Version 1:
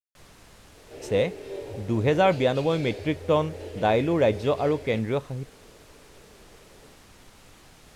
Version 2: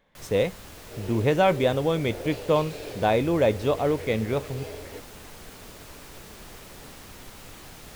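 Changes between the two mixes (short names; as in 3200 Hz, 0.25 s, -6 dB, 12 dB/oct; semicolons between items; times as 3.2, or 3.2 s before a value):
speech: entry -0.80 s; first sound +7.0 dB; master: remove LPF 11000 Hz 12 dB/oct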